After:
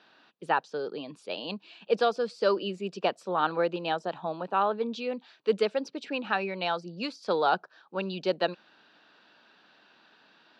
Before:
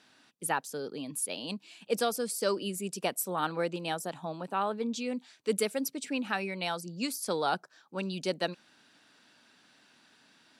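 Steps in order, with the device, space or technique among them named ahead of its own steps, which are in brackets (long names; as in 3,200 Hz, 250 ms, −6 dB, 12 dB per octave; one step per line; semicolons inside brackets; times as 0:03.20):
kitchen radio (loudspeaker in its box 220–3,900 Hz, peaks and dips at 260 Hz −8 dB, 2,100 Hz −8 dB, 3,300 Hz −3 dB)
level +5.5 dB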